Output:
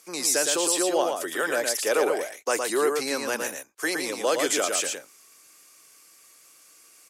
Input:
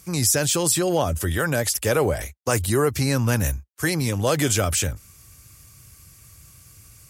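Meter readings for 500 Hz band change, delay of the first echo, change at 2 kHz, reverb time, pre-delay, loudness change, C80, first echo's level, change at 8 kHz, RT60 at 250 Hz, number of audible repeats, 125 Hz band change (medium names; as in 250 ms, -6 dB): -1.0 dB, 114 ms, -1.0 dB, no reverb, no reverb, -3.0 dB, no reverb, -4.5 dB, -2.5 dB, no reverb, 1, under -30 dB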